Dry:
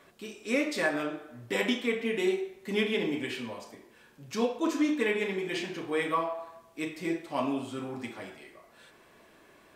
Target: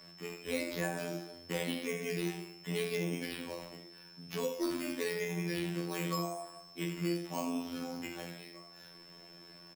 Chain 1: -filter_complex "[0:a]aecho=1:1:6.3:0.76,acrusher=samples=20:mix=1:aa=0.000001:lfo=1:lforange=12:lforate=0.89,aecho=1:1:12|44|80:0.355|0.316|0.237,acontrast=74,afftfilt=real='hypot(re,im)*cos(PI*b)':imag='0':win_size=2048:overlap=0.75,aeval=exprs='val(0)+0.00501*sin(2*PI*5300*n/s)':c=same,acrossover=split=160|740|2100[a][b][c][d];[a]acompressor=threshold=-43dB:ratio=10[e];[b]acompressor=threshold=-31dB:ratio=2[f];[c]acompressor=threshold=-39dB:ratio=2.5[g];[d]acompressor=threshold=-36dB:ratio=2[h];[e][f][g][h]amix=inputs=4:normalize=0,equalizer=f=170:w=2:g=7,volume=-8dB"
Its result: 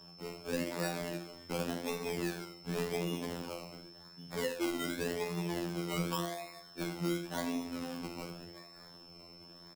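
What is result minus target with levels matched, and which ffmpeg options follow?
decimation with a swept rate: distortion +8 dB
-filter_complex "[0:a]aecho=1:1:6.3:0.76,acrusher=samples=7:mix=1:aa=0.000001:lfo=1:lforange=4.2:lforate=0.89,aecho=1:1:12|44|80:0.355|0.316|0.237,acontrast=74,afftfilt=real='hypot(re,im)*cos(PI*b)':imag='0':win_size=2048:overlap=0.75,aeval=exprs='val(0)+0.00501*sin(2*PI*5300*n/s)':c=same,acrossover=split=160|740|2100[a][b][c][d];[a]acompressor=threshold=-43dB:ratio=10[e];[b]acompressor=threshold=-31dB:ratio=2[f];[c]acompressor=threshold=-39dB:ratio=2.5[g];[d]acompressor=threshold=-36dB:ratio=2[h];[e][f][g][h]amix=inputs=4:normalize=0,equalizer=f=170:w=2:g=7,volume=-8dB"

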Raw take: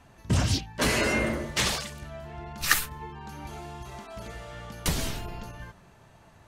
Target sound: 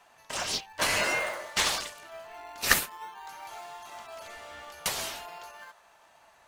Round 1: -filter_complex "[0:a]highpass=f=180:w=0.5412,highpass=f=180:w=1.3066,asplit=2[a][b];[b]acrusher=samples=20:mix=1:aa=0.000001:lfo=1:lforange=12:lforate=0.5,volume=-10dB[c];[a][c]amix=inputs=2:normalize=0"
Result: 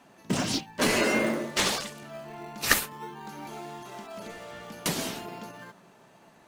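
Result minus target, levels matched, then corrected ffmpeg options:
250 Hz band +13.5 dB
-filter_complex "[0:a]highpass=f=650:w=0.5412,highpass=f=650:w=1.3066,asplit=2[a][b];[b]acrusher=samples=20:mix=1:aa=0.000001:lfo=1:lforange=12:lforate=0.5,volume=-10dB[c];[a][c]amix=inputs=2:normalize=0"

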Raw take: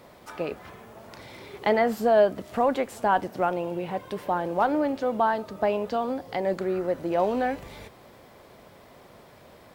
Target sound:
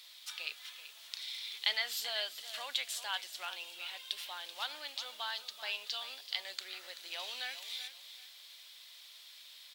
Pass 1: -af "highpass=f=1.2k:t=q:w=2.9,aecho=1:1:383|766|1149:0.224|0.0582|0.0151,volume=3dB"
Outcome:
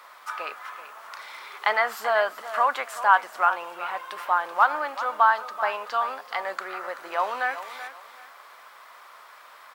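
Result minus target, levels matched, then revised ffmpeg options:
4000 Hz band -18.5 dB
-af "highpass=f=3.6k:t=q:w=2.9,aecho=1:1:383|766|1149:0.224|0.0582|0.0151,volume=3dB"

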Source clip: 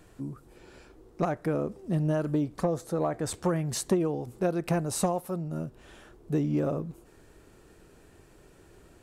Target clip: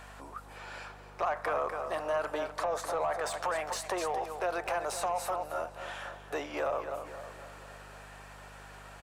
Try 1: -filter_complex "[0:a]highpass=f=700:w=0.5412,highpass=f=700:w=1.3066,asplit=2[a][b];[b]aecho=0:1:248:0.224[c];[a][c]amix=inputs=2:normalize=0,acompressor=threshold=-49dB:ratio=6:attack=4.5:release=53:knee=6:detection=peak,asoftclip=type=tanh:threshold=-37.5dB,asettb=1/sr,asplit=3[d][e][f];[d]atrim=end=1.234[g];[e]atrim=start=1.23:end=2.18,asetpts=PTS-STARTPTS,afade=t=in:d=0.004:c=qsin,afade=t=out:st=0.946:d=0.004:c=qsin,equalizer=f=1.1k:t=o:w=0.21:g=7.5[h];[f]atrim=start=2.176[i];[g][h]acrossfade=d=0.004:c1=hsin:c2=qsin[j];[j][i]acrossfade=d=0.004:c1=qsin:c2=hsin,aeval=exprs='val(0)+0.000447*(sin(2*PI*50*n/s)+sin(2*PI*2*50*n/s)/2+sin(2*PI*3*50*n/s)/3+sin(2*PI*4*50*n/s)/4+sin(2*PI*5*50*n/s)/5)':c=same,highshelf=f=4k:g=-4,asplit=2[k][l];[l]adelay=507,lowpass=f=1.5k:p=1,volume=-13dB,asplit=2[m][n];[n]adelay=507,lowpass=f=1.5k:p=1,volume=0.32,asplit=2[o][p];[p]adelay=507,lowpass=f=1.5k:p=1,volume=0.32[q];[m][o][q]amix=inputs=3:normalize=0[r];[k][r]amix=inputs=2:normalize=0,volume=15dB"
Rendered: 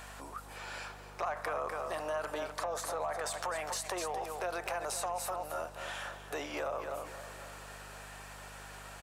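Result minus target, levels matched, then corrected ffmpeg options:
compressor: peak gain reduction +6 dB; 8000 Hz band +6.0 dB
-filter_complex "[0:a]highpass=f=700:w=0.5412,highpass=f=700:w=1.3066,asplit=2[a][b];[b]aecho=0:1:248:0.224[c];[a][c]amix=inputs=2:normalize=0,acompressor=threshold=-41.5dB:ratio=6:attack=4.5:release=53:knee=6:detection=peak,asoftclip=type=tanh:threshold=-37.5dB,asettb=1/sr,asplit=3[d][e][f];[d]atrim=end=1.234[g];[e]atrim=start=1.23:end=2.18,asetpts=PTS-STARTPTS,afade=t=in:d=0.004:c=qsin,afade=t=out:st=0.946:d=0.004:c=qsin,equalizer=f=1.1k:t=o:w=0.21:g=7.5[h];[f]atrim=start=2.176[i];[g][h]acrossfade=d=0.004:c1=hsin:c2=qsin[j];[j][i]acrossfade=d=0.004:c1=qsin:c2=hsin,aeval=exprs='val(0)+0.000447*(sin(2*PI*50*n/s)+sin(2*PI*2*50*n/s)/2+sin(2*PI*3*50*n/s)/3+sin(2*PI*4*50*n/s)/4+sin(2*PI*5*50*n/s)/5)':c=same,highshelf=f=4k:g=-12,asplit=2[k][l];[l]adelay=507,lowpass=f=1.5k:p=1,volume=-13dB,asplit=2[m][n];[n]adelay=507,lowpass=f=1.5k:p=1,volume=0.32,asplit=2[o][p];[p]adelay=507,lowpass=f=1.5k:p=1,volume=0.32[q];[m][o][q]amix=inputs=3:normalize=0[r];[k][r]amix=inputs=2:normalize=0,volume=15dB"

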